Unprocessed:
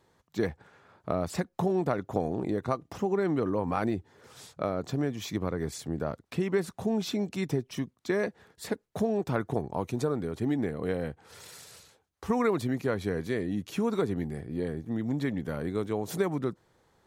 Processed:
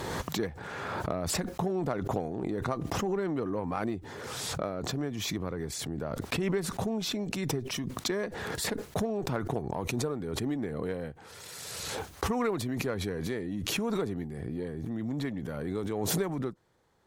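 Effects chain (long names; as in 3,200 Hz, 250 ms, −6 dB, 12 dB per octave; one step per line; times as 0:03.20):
harmonic generator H 8 −32 dB, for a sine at −12.5 dBFS
background raised ahead of every attack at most 22 dB per second
level −4 dB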